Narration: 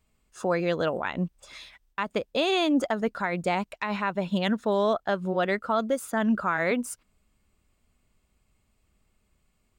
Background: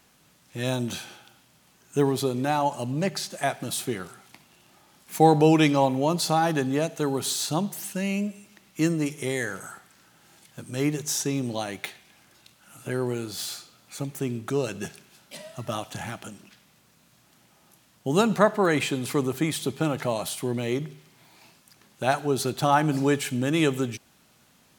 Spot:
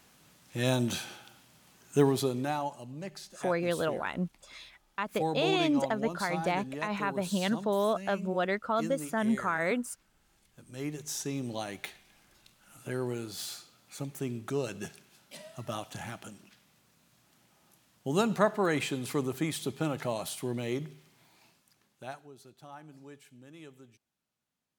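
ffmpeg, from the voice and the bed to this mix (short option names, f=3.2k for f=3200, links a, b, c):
-filter_complex "[0:a]adelay=3000,volume=-4dB[a];[1:a]volume=8dB,afade=t=out:st=1.9:d=0.9:silence=0.199526,afade=t=in:st=10.58:d=1.05:silence=0.375837,afade=t=out:st=21.05:d=1.26:silence=0.0841395[b];[a][b]amix=inputs=2:normalize=0"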